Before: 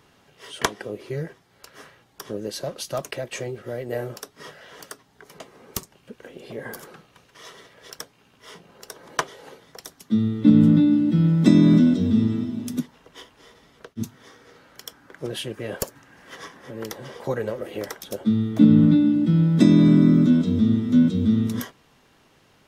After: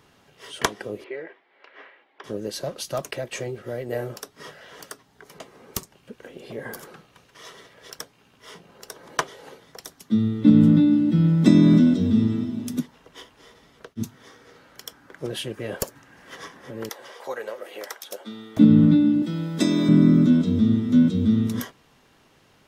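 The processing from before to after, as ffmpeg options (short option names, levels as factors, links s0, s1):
-filter_complex "[0:a]asettb=1/sr,asplit=3[s0][s1][s2];[s0]atrim=end=1.044[s3];[s1]atrim=start=1.04:end=2.24,asetpts=PTS-STARTPTS,afade=t=in:d=0.004:c=qsin,afade=t=out:st=1.196:d=0.004:c=qsin,highpass=f=330:w=0.5412,highpass=f=330:w=1.3066,equalizer=f=450:t=q:w=4:g=-3,equalizer=f=1300:t=q:w=4:g=-3,equalizer=f=2100:t=q:w=4:g=6,lowpass=f=3100:w=0.5412,lowpass=f=3100:w=1.3066[s4];[s2]atrim=start=2.236[s5];[s3][s4]acrossfade=d=0.004:c1=hsin:c2=qsin[s6];[s6][s5]acrossfade=d=0.004:c1=qsin:c2=hsin,asettb=1/sr,asplit=3[s7][s8][s9];[s7]atrim=end=16.894[s10];[s8]atrim=start=16.89:end=18.57,asetpts=PTS-STARTPTS,afade=t=in:d=0.004:c=qsin,afade=t=out:st=1.676:d=0.004:c=qsin,highpass=620[s11];[s9]atrim=start=18.566[s12];[s10][s11]acrossfade=d=0.004:c1=hsin:c2=qsin[s13];[s13][s12]acrossfade=d=0.004:c1=qsin:c2=hsin,asettb=1/sr,asplit=3[s14][s15][s16];[s14]atrim=end=19.224[s17];[s15]atrim=start=19.22:end=19.89,asetpts=PTS-STARTPTS,afade=t=in:d=0.004:c=qsin,afade=t=out:st=0.666:d=0.004:c=qsin,bass=f=250:g=-14,treble=f=4000:g=6[s18];[s16]atrim=start=19.886[s19];[s17][s18]acrossfade=d=0.004:c1=hsin:c2=qsin[s20];[s20][s19]acrossfade=d=0.004:c1=qsin:c2=hsin"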